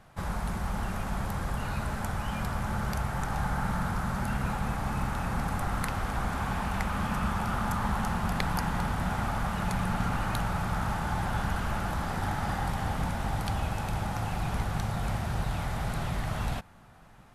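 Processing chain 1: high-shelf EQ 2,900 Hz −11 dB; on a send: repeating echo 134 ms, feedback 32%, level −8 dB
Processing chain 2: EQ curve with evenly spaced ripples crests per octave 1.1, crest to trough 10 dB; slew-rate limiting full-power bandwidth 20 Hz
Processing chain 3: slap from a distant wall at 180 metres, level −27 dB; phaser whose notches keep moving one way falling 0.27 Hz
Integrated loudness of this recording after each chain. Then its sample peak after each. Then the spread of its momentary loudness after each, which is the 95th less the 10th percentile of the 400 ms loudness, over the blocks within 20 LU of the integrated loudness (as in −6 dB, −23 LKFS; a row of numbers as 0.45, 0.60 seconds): −31.5, −32.0, −33.0 LKFS; −13.5, −16.0, −12.0 dBFS; 3, 2, 3 LU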